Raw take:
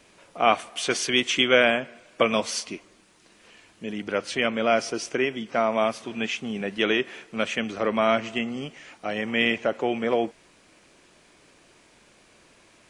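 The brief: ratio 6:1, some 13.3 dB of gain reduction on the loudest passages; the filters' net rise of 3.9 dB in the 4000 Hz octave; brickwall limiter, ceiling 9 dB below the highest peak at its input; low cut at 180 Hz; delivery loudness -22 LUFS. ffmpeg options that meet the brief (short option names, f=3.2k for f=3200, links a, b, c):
-af "highpass=180,equalizer=f=4k:t=o:g=5.5,acompressor=threshold=-28dB:ratio=6,volume=13dB,alimiter=limit=-10.5dB:level=0:latency=1"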